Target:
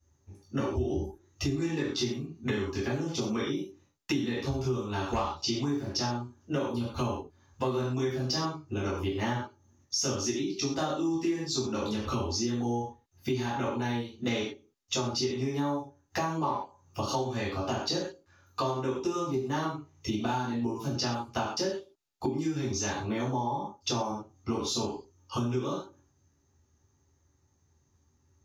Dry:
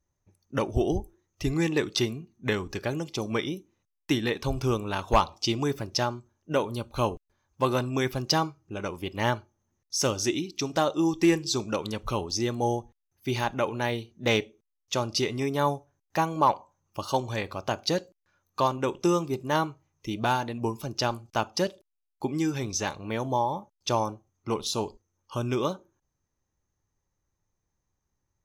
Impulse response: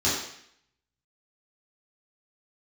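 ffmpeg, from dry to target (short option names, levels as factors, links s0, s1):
-filter_complex "[1:a]atrim=start_sample=2205,atrim=end_sample=6174[s0];[0:a][s0]afir=irnorm=-1:irlink=0,acompressor=threshold=0.0562:ratio=5,volume=0.596"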